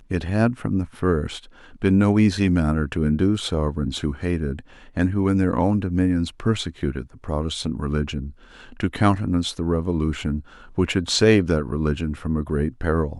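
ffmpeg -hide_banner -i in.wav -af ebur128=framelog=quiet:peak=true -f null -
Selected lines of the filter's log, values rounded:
Integrated loudness:
  I:         -22.5 LUFS
  Threshold: -32.8 LUFS
Loudness range:
  LRA:         3.7 LU
  Threshold: -42.9 LUFS
  LRA low:   -25.1 LUFS
  LRA high:  -21.4 LUFS
True peak:
  Peak:       -1.9 dBFS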